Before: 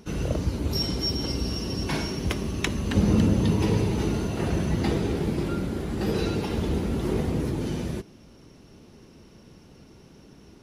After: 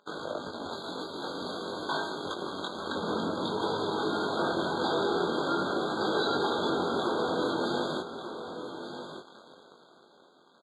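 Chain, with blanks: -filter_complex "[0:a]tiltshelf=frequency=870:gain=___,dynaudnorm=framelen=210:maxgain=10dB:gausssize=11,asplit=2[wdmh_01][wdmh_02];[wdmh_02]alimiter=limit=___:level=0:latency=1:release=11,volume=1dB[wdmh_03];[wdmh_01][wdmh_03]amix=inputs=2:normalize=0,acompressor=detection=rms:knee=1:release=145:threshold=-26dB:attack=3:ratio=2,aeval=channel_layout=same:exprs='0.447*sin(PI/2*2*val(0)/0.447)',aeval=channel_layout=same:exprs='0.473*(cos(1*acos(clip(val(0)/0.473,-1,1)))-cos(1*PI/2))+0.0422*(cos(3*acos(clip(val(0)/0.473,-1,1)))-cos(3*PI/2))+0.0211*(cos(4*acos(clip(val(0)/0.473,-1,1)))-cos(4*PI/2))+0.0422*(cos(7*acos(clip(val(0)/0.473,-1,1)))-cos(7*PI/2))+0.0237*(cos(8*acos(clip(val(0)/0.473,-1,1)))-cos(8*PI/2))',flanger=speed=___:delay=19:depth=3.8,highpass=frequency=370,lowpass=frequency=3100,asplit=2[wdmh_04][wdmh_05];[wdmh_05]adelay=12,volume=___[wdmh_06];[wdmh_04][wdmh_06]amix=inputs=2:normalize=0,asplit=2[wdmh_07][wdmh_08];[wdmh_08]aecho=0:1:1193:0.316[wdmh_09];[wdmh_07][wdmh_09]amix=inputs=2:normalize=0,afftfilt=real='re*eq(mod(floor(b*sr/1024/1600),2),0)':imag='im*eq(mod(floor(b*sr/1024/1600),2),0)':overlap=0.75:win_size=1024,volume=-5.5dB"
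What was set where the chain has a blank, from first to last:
-6.5, -10.5dB, 0.49, -12dB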